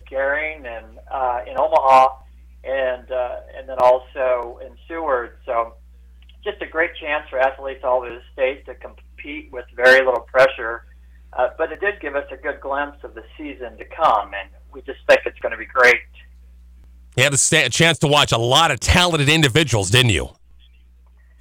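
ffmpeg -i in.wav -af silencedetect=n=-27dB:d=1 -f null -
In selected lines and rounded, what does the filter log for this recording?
silence_start: 15.99
silence_end: 17.17 | silence_duration: 1.18
silence_start: 20.26
silence_end: 21.41 | silence_duration: 1.15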